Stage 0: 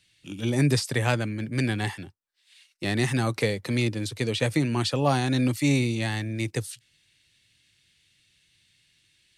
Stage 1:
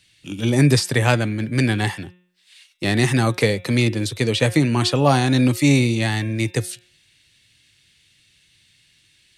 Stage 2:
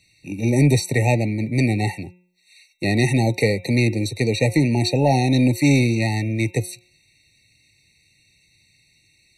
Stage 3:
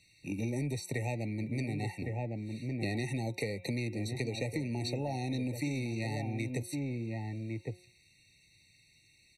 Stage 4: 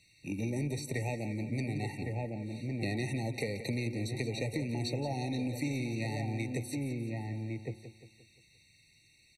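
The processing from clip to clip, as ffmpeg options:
-af "bandreject=f=179.5:t=h:w=4,bandreject=f=359:t=h:w=4,bandreject=f=538.5:t=h:w=4,bandreject=f=718:t=h:w=4,bandreject=f=897.5:t=h:w=4,bandreject=f=1.077k:t=h:w=4,bandreject=f=1.2565k:t=h:w=4,bandreject=f=1.436k:t=h:w=4,bandreject=f=1.6155k:t=h:w=4,bandreject=f=1.795k:t=h:w=4,bandreject=f=1.9745k:t=h:w=4,bandreject=f=2.154k:t=h:w=4,bandreject=f=2.3335k:t=h:w=4,bandreject=f=2.513k:t=h:w=4,bandreject=f=2.6925k:t=h:w=4,bandreject=f=2.872k:t=h:w=4,bandreject=f=3.0515k:t=h:w=4,bandreject=f=3.231k:t=h:w=4,bandreject=f=3.4105k:t=h:w=4,bandreject=f=3.59k:t=h:w=4,bandreject=f=3.7695k:t=h:w=4,bandreject=f=3.949k:t=h:w=4,volume=7dB"
-af "acontrast=48,afftfilt=real='re*eq(mod(floor(b*sr/1024/920),2),0)':imag='im*eq(mod(floor(b*sr/1024/920),2),0)':win_size=1024:overlap=0.75,volume=-5dB"
-filter_complex "[0:a]asplit=2[a][b];[b]adelay=1108,volume=-10dB,highshelf=f=4k:g=-24.9[c];[a][c]amix=inputs=2:normalize=0,acompressor=threshold=-26dB:ratio=10,volume=-5.5dB"
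-af "aecho=1:1:175|350|525|700|875:0.266|0.128|0.0613|0.0294|0.0141"

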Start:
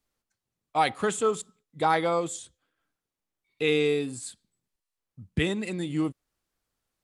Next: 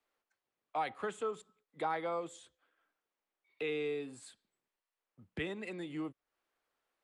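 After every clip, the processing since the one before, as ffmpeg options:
-filter_complex "[0:a]acrossover=split=200[a][b];[b]acompressor=threshold=-46dB:ratio=2[c];[a][c]amix=inputs=2:normalize=0,acrossover=split=340 3200:gain=0.1 1 0.224[d][e][f];[d][e][f]amix=inputs=3:normalize=0,volume=2.5dB"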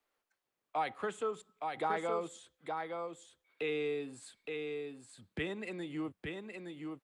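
-af "aecho=1:1:867:0.596,volume=1dB"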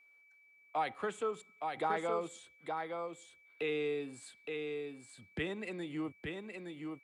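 -af "aeval=exprs='val(0)+0.000794*sin(2*PI*2300*n/s)':c=same"

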